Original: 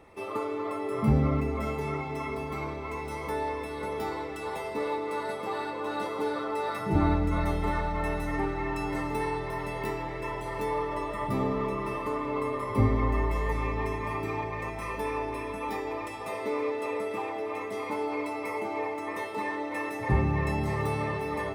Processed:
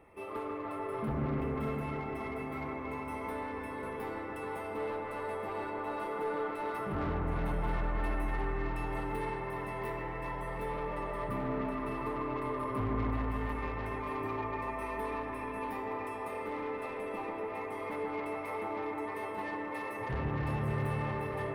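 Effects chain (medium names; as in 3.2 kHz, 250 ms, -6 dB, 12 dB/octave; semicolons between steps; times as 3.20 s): high-order bell 5.2 kHz -10.5 dB 1.3 oct; saturation -27 dBFS, distortion -10 dB; on a send: bucket-brigade echo 145 ms, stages 2048, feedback 81%, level -4 dB; on the sum: trim -5 dB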